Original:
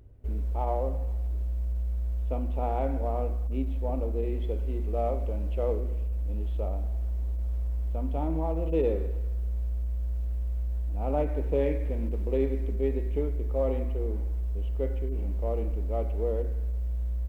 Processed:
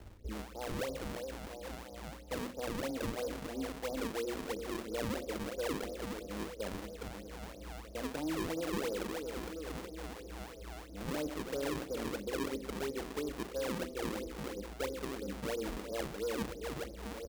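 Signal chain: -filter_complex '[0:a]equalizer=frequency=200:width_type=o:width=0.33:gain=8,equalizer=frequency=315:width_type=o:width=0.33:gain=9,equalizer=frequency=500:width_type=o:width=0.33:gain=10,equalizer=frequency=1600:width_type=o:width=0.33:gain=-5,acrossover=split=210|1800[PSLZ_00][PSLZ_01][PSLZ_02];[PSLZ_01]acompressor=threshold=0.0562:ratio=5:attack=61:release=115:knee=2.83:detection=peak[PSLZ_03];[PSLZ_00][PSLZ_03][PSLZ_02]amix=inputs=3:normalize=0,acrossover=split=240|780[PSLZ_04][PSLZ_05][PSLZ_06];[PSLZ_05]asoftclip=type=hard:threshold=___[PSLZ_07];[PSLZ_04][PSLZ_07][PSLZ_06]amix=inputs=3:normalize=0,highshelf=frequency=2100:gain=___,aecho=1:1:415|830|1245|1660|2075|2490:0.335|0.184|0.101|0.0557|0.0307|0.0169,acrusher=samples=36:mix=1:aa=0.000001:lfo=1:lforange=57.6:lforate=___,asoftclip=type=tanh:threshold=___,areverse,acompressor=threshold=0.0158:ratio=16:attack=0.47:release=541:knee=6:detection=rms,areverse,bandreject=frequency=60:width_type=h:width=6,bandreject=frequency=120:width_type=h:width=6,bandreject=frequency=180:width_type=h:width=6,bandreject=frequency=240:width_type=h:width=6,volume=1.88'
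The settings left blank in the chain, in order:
0.0794, -9.5, 3, 0.141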